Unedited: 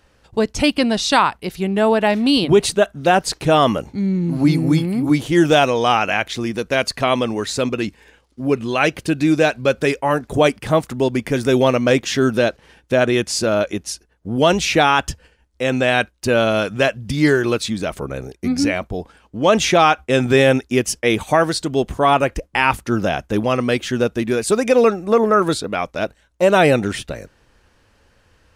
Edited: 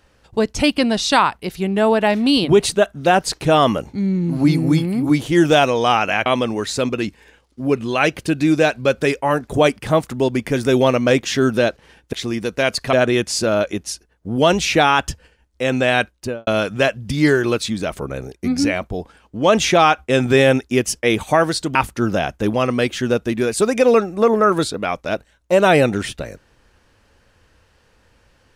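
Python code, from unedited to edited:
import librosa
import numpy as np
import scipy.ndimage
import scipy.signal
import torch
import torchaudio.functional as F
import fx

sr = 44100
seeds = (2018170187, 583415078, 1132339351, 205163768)

y = fx.studio_fade_out(x, sr, start_s=16.12, length_s=0.35)
y = fx.edit(y, sr, fx.move(start_s=6.26, length_s=0.8, to_s=12.93),
    fx.cut(start_s=21.75, length_s=0.9), tone=tone)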